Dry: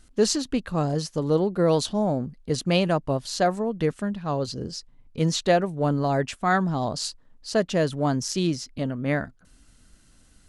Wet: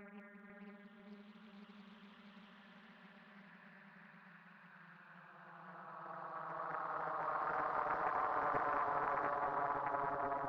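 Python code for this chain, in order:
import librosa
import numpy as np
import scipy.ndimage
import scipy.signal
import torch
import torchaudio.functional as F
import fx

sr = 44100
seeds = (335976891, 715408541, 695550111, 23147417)

p1 = fx.filter_sweep_bandpass(x, sr, from_hz=7900.0, to_hz=490.0, start_s=2.2, end_s=5.25, q=2.0)
p2 = fx.paulstretch(p1, sr, seeds[0], factor=41.0, window_s=0.1, from_s=4.1)
p3 = p2 + fx.echo_split(p2, sr, split_hz=1200.0, low_ms=498, high_ms=198, feedback_pct=52, wet_db=-3.0, dry=0)
p4 = fx.doppler_dist(p3, sr, depth_ms=0.63)
y = p4 * librosa.db_to_amplitude(-8.5)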